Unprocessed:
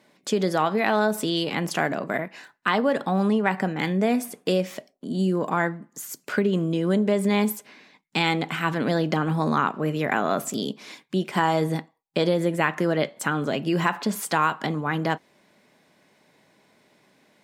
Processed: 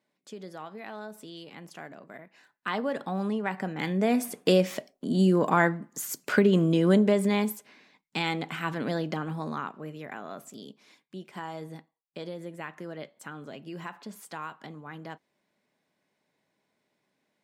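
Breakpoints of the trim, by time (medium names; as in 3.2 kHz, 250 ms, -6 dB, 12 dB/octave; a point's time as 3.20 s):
2.20 s -19 dB
2.73 s -8 dB
3.58 s -8 dB
4.44 s +1.5 dB
6.94 s +1.5 dB
7.55 s -6.5 dB
8.95 s -6.5 dB
10.16 s -16.5 dB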